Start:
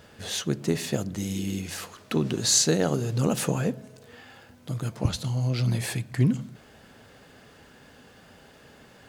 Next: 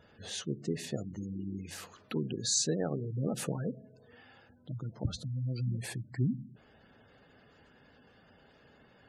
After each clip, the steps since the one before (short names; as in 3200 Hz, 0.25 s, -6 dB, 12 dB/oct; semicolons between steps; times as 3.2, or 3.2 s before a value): spectral gate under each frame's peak -20 dB strong; gain -8.5 dB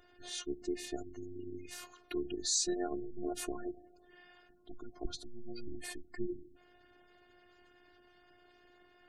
robotiser 355 Hz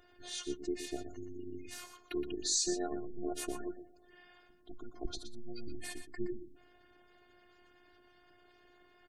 echo 0.12 s -10.5 dB